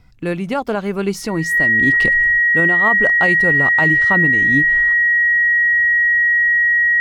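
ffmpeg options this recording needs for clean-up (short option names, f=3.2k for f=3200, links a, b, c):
-af "bandreject=f=1.9k:w=30"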